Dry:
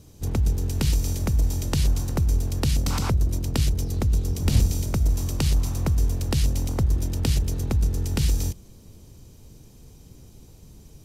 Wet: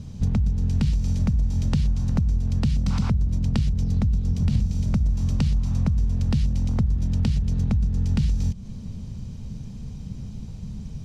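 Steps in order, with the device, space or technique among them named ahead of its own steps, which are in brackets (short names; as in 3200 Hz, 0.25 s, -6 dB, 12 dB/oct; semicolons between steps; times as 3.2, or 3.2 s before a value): jukebox (LPF 5300 Hz 12 dB/oct; resonant low shelf 260 Hz +7 dB, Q 3; compressor 5:1, threshold -25 dBFS, peak gain reduction 17.5 dB); gain +5 dB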